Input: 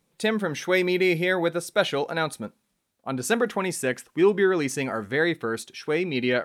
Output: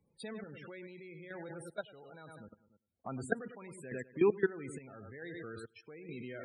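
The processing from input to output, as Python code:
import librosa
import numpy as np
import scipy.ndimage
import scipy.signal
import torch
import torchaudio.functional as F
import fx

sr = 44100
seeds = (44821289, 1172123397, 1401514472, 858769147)

y = fx.peak_eq(x, sr, hz=86.0, db=13.0, octaves=0.89)
y = fx.comb_fb(y, sr, f0_hz=420.0, decay_s=0.35, harmonics='all', damping=0.0, mix_pct=30)
y = fx.echo_feedback(y, sr, ms=99, feedback_pct=42, wet_db=-10.5)
y = fx.level_steps(y, sr, step_db=21)
y = fx.peak_eq(y, sr, hz=6000.0, db=-9.5, octaves=0.22)
y = fx.spec_topn(y, sr, count=32)
y = fx.tremolo_random(y, sr, seeds[0], hz=2.3, depth_pct=85)
y = fx.band_squash(y, sr, depth_pct=40)
y = F.gain(torch.from_numpy(y), 3.0).numpy()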